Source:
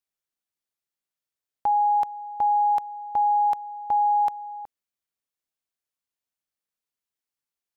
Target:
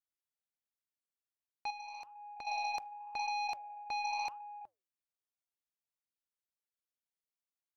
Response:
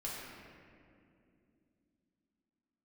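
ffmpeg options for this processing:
-filter_complex "[0:a]flanger=delay=2.4:depth=7.1:regen=-87:speed=0.89:shape=sinusoidal,aeval=exprs='0.106*(cos(1*acos(clip(val(0)/0.106,-1,1)))-cos(1*PI/2))+0.0376*(cos(3*acos(clip(val(0)/0.106,-1,1)))-cos(3*PI/2))+0.000841*(cos(6*acos(clip(val(0)/0.106,-1,1)))-cos(6*PI/2))+0.0188*(cos(7*acos(clip(val(0)/0.106,-1,1)))-cos(7*PI/2))':channel_layout=same,asettb=1/sr,asplit=3[link_01][link_02][link_03];[link_01]atrim=end=1.704[link_04];[link_02]atrim=start=1.7:end=2.47,asetpts=PTS-STARTPTS,afade=type=in:duration=0.004:curve=qsin,afade=type=out:start_time=0.766:duration=0.004:curve=qsin,acompressor=threshold=-38dB:ratio=4[link_05];[link_03]atrim=start=2.466[link_06];[link_04][link_05]acrossfade=duration=0.004:curve1=hsin:curve2=qsin[link_07];[link_07][link_06]acrossfade=duration=0.004:curve1=qsin:curve2=hsin,volume=-8.5dB"

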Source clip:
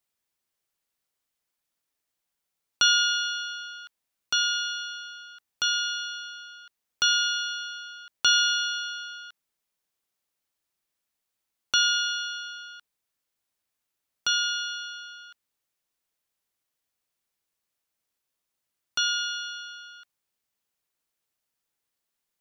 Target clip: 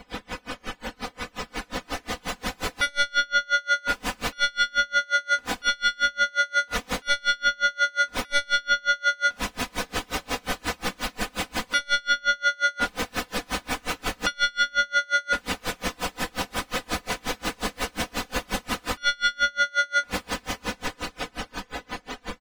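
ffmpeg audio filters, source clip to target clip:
ffmpeg -i in.wav -af "aeval=exprs='val(0)+0.5*0.0447*sgn(val(0))':channel_layout=same,aecho=1:1:53|69|79:0.299|0.355|0.335,aeval=exprs='0.422*sin(PI/2*2.51*val(0)/0.422)':channel_layout=same,dynaudnorm=framelen=310:gausssize=13:maxgain=7dB,lowpass=frequency=1600:poles=1,aecho=1:1:4:0.7,alimiter=limit=-11.5dB:level=0:latency=1:release=39,lowshelf=frequency=140:gain=4.5,afftdn=noise_reduction=25:noise_floor=-33,aeval=exprs='val(0)*pow(10,-33*(0.5-0.5*cos(2*PI*5.6*n/s))/20)':channel_layout=same" out.wav

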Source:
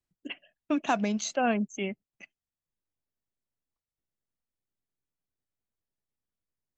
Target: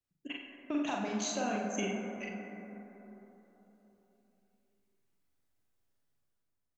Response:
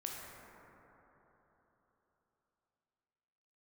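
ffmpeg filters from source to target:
-filter_complex "[0:a]dynaudnorm=framelen=120:gausssize=11:maxgain=9dB,alimiter=limit=-18dB:level=0:latency=1:release=289,acompressor=threshold=-29dB:ratio=4,asplit=2[link_01][link_02];[link_02]adelay=48,volume=-7.5dB[link_03];[link_01][link_03]amix=inputs=2:normalize=0,asplit=2[link_04][link_05];[1:a]atrim=start_sample=2205,adelay=41[link_06];[link_05][link_06]afir=irnorm=-1:irlink=0,volume=1dB[link_07];[link_04][link_07]amix=inputs=2:normalize=0,volume=-5.5dB"

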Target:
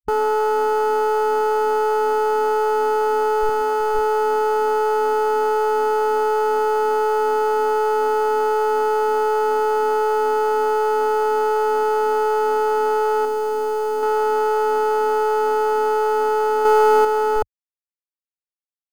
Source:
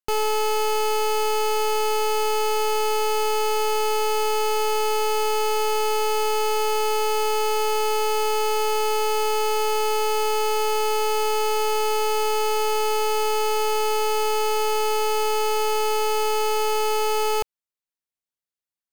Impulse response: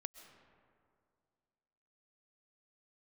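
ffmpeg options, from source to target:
-filter_complex "[0:a]acrusher=bits=5:mix=0:aa=0.000001,asettb=1/sr,asplit=3[link_01][link_02][link_03];[link_01]atrim=end=3.494[link_04];[link_02]atrim=start=3.49:end=3.95,asetpts=PTS-STARTPTS,afade=type=in:duration=0.004:curve=qsin,afade=type=out:start_time=0.456:duration=0.004:curve=qsin,lowshelf=frequency=170:gain=-12[link_05];[link_03]atrim=start=3.946[link_06];[link_04][link_05]acrossfade=duration=0.004:curve1=hsin:curve2=qsin[link_07];[link_07][link_06]acrossfade=duration=0.004:curve1=qsin:curve2=hsin,afwtdn=0.0562,asettb=1/sr,asplit=3[link_08][link_09][link_10];[link_08]atrim=end=13.254[link_11];[link_09]atrim=start=13.25:end=14.03,asetpts=PTS-STARTPTS,afade=type=in:duration=0.004:curve=qsin,afade=type=out:start_time=0.776:duration=0.004:curve=qsin,equalizer=frequency=1500:width=0.51:gain=-7[link_12];[link_10]atrim=start=14.026[link_13];[link_11][link_12]acrossfade=duration=0.004:curve1=hsin:curve2=qsin[link_14];[link_14][link_13]acrossfade=duration=0.004:curve1=qsin:curve2=hsin,asettb=1/sr,asplit=3[link_15][link_16][link_17];[link_15]atrim=end=16.654[link_18];[link_16]atrim=start=16.65:end=17.05,asetpts=PTS-STARTPTS,afade=type=in:duration=0.004:curve=qsin,afade=type=out:start_time=0.396:duration=0.004:curve=qsin,acontrast=33[link_19];[link_17]atrim=start=17.046[link_20];[link_18][link_19]acrossfade=duration=0.004:curve1=hsin:curve2=qsin[link_21];[link_21][link_20]acrossfade=duration=0.004:curve1=qsin:curve2=hsin,volume=4dB"

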